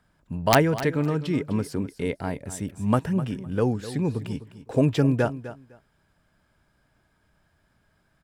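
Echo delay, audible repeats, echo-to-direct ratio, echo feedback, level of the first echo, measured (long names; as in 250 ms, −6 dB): 254 ms, 2, −14.0 dB, 18%, −14.0 dB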